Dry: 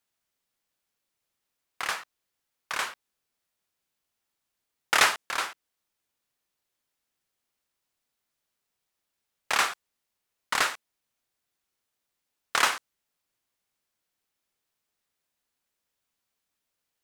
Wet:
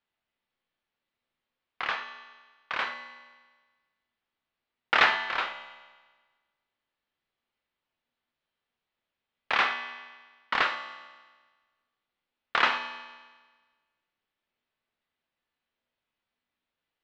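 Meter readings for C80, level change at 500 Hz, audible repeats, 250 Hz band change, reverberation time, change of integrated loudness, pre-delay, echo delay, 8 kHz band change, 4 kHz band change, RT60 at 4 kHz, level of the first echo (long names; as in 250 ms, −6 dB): 10.5 dB, +0.5 dB, no echo audible, +1.0 dB, 1.4 s, −0.5 dB, 3 ms, no echo audible, below −20 dB, −2.0 dB, 1.4 s, no echo audible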